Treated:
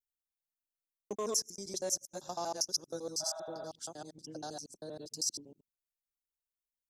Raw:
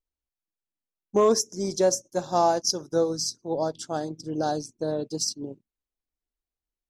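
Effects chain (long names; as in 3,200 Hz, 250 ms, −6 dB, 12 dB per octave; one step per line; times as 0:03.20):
reversed piece by piece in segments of 79 ms
healed spectral selection 0:03.23–0:03.63, 550–4,000 Hz after
first-order pre-emphasis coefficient 0.8
level −3 dB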